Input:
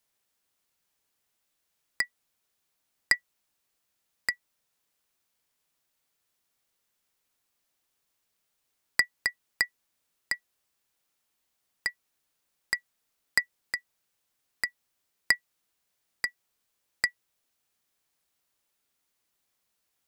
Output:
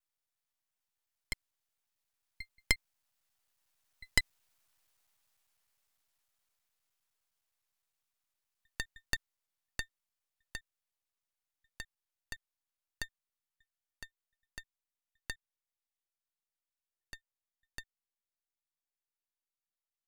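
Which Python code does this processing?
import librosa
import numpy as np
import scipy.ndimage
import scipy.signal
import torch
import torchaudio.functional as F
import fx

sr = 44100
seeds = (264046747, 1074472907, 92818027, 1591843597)

y = fx.block_reorder(x, sr, ms=96.0, group=7)
y = fx.doppler_pass(y, sr, speed_mps=26, closest_m=24.0, pass_at_s=4.64)
y = scipy.signal.sosfilt(scipy.signal.butter(4, 610.0, 'highpass', fs=sr, output='sos'), y)
y = np.maximum(y, 0.0)
y = y * librosa.db_to_amplitude(6.5)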